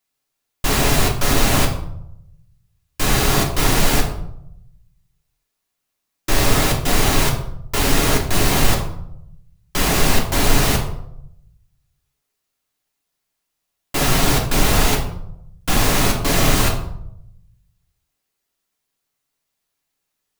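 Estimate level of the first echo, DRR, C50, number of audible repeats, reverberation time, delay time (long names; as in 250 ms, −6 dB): no echo audible, −1.0 dB, 7.0 dB, no echo audible, 0.75 s, no echo audible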